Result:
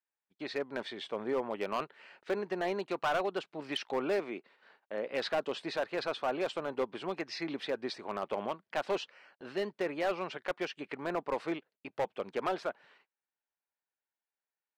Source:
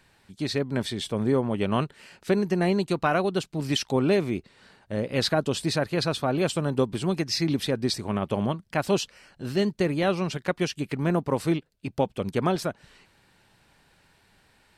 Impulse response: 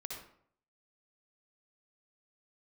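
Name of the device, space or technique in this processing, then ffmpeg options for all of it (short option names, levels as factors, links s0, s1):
walkie-talkie: -filter_complex "[0:a]highpass=500,lowpass=2500,asoftclip=type=hard:threshold=0.0708,agate=range=0.0251:threshold=0.00141:ratio=16:detection=peak,asettb=1/sr,asplit=3[s0][s1][s2];[s0]atrim=end=4.194[s3];[s1]atrim=start=4.19:end=5.13,asetpts=PTS-STARTPTS,afade=t=in:d=0.004:c=qsin,afade=t=out:st=0.936:d=0.004:c=qsin,highpass=160[s4];[s2]atrim=start=5.126[s5];[s3][s4]acrossfade=d=0.004:c1=hsin:c2=qsin[s6];[s6][s5]acrossfade=d=0.004:c1=qsin:c2=hsin,volume=0.75"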